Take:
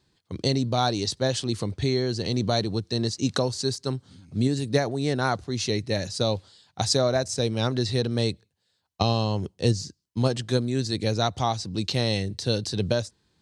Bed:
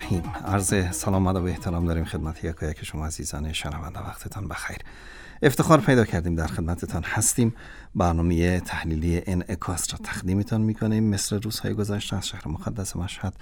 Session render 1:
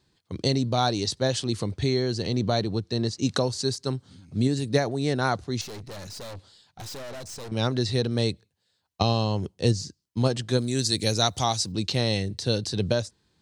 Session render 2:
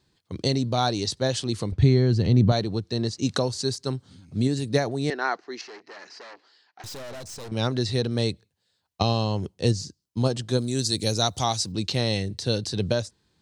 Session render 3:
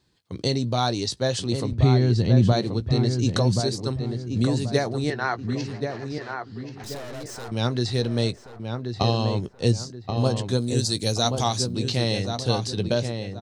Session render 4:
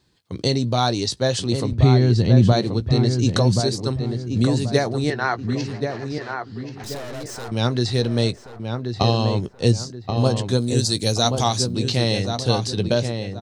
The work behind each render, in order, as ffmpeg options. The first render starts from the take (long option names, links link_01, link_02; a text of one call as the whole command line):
ffmpeg -i in.wav -filter_complex "[0:a]asettb=1/sr,asplit=3[link_01][link_02][link_03];[link_01]atrim=end=2.264[link_04];[link_02]atrim=start=2.26:end=3.22,asetpts=PTS-STARTPTS,afade=type=in:duration=0.004:curve=qsin,afade=type=out:start_time=0.956:duration=0.004:curve=qsin,highshelf=frequency=5100:gain=-7[link_05];[link_03]atrim=start=3.216[link_06];[link_04][link_05]acrossfade=duration=0.004:curve1=hsin:curve2=qsin[link_07];[link_07][link_06]acrossfade=duration=0.004:curve1=qsin:curve2=hsin,asettb=1/sr,asplit=3[link_08][link_09][link_10];[link_08]atrim=end=5.614[link_11];[link_09]atrim=start=5.61:end=7.52,asetpts=PTS-STARTPTS,afade=type=in:duration=0.004:curve=qsin,afade=type=out:start_time=1.906:duration=0.004:curve=qsin,aeval=exprs='(tanh(70.8*val(0)+0.35)-tanh(0.35))/70.8':channel_layout=same[link_12];[link_10]atrim=start=7.516[link_13];[link_11][link_12]acrossfade=duration=0.004:curve1=hsin:curve2=qsin[link_14];[link_14][link_13]acrossfade=duration=0.004:curve1=qsin:curve2=hsin,asplit=3[link_15][link_16][link_17];[link_15]afade=type=out:start_time=10.58:duration=0.02[link_18];[link_16]aemphasis=mode=production:type=75fm,afade=type=in:start_time=10.58:duration=0.02,afade=type=out:start_time=11.71:duration=0.02[link_19];[link_17]afade=type=in:start_time=11.71:duration=0.02[link_20];[link_18][link_19][link_20]amix=inputs=3:normalize=0" out.wav
ffmpeg -i in.wav -filter_complex "[0:a]asettb=1/sr,asplit=3[link_01][link_02][link_03];[link_01]atrim=end=1.724[link_04];[link_02]atrim=start=1.72:end=2.52,asetpts=PTS-STARTPTS,afade=type=in:duration=0.004:curve=qsin,afade=type=out:start_time=0.796:duration=0.004:curve=qsin,bass=frequency=250:gain=11,treble=frequency=4000:gain=-8[link_05];[link_03]atrim=start=2.516[link_06];[link_04][link_05]acrossfade=duration=0.004:curve1=hsin:curve2=qsin[link_07];[link_07][link_06]acrossfade=duration=0.004:curve1=qsin:curve2=hsin,asettb=1/sr,asplit=3[link_08][link_09][link_10];[link_08]atrim=end=5.104[link_11];[link_09]atrim=start=5.1:end=6.84,asetpts=PTS-STARTPTS,afade=type=in:duration=0.004:curve=qsin,afade=type=out:start_time=1.736:duration=0.004:curve=qsin,highpass=frequency=340:width=0.5412,highpass=frequency=340:width=1.3066,equalizer=frequency=550:width_type=q:width=4:gain=-9,equalizer=frequency=1800:width_type=q:width=4:gain=7,equalizer=frequency=3600:width_type=q:width=4:gain=-10,lowpass=frequency=5100:width=0.5412,lowpass=frequency=5100:width=1.3066[link_12];[link_10]atrim=start=6.836[link_13];[link_11][link_12]acrossfade=duration=0.004:curve1=hsin:curve2=qsin[link_14];[link_14][link_13]acrossfade=duration=0.004:curve1=qsin:curve2=hsin,asettb=1/sr,asplit=3[link_15][link_16][link_17];[link_15]atrim=end=9.854[link_18];[link_16]atrim=start=9.85:end=11.4,asetpts=PTS-STARTPTS,afade=type=in:duration=0.004:curve=qsin,afade=type=out:start_time=1.546:duration=0.004:curve=qsin,equalizer=frequency=2000:width=1.5:gain=-5[link_19];[link_17]atrim=start=11.396[link_20];[link_18][link_19]acrossfade=duration=0.004:curve1=hsin:curve2=qsin[link_21];[link_21][link_20]acrossfade=duration=0.004:curve1=qsin:curve2=hsin" out.wav
ffmpeg -i in.wav -filter_complex "[0:a]asplit=2[link_01][link_02];[link_02]adelay=17,volume=-13dB[link_03];[link_01][link_03]amix=inputs=2:normalize=0,asplit=2[link_04][link_05];[link_05]adelay=1080,lowpass=frequency=2100:poles=1,volume=-5.5dB,asplit=2[link_06][link_07];[link_07]adelay=1080,lowpass=frequency=2100:poles=1,volume=0.38,asplit=2[link_08][link_09];[link_09]adelay=1080,lowpass=frequency=2100:poles=1,volume=0.38,asplit=2[link_10][link_11];[link_11]adelay=1080,lowpass=frequency=2100:poles=1,volume=0.38,asplit=2[link_12][link_13];[link_13]adelay=1080,lowpass=frequency=2100:poles=1,volume=0.38[link_14];[link_04][link_06][link_08][link_10][link_12][link_14]amix=inputs=6:normalize=0" out.wav
ffmpeg -i in.wav -af "volume=3.5dB" out.wav